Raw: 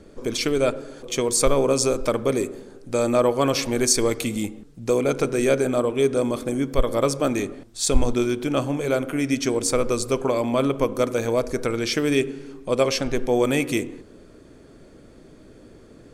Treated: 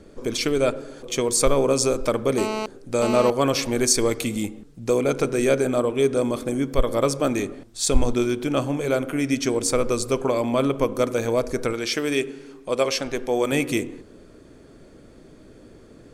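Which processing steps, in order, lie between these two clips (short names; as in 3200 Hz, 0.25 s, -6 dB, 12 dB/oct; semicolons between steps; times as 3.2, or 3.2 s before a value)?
2.38–3.3 GSM buzz -27 dBFS; 11.73–13.52 low shelf 220 Hz -10.5 dB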